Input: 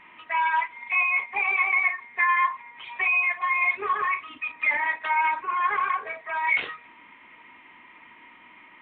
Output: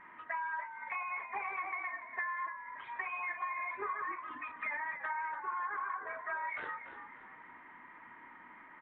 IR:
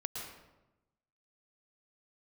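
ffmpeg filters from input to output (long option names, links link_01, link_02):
-filter_complex "[0:a]highshelf=frequency=2100:width_type=q:width=3:gain=-8,acompressor=threshold=-31dB:ratio=10,asplit=5[link_01][link_02][link_03][link_04][link_05];[link_02]adelay=289,afreqshift=-59,volume=-10dB[link_06];[link_03]adelay=578,afreqshift=-118,volume=-18.6dB[link_07];[link_04]adelay=867,afreqshift=-177,volume=-27.3dB[link_08];[link_05]adelay=1156,afreqshift=-236,volume=-35.9dB[link_09];[link_01][link_06][link_07][link_08][link_09]amix=inputs=5:normalize=0,volume=-4.5dB"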